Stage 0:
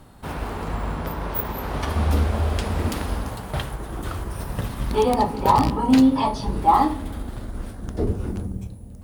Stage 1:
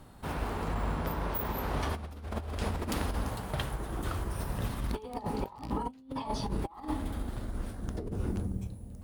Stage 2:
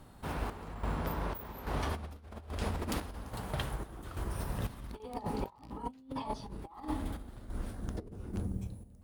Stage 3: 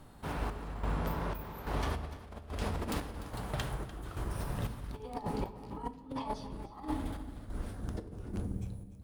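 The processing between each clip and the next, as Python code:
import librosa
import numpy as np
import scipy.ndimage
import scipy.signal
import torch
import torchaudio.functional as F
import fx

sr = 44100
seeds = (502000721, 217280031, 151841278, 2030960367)

y1 = fx.over_compress(x, sr, threshold_db=-25.0, ratio=-0.5)
y1 = F.gain(torch.from_numpy(y1), -8.0).numpy()
y2 = fx.chopper(y1, sr, hz=1.2, depth_pct=65, duty_pct=60)
y2 = F.gain(torch.from_numpy(y2), -2.0).numpy()
y3 = fx.self_delay(y2, sr, depth_ms=0.078)
y3 = y3 + 10.0 ** (-16.0 / 20.0) * np.pad(y3, (int(296 * sr / 1000.0), 0))[:len(y3)]
y3 = fx.room_shoebox(y3, sr, seeds[0], volume_m3=390.0, walls='mixed', distance_m=0.33)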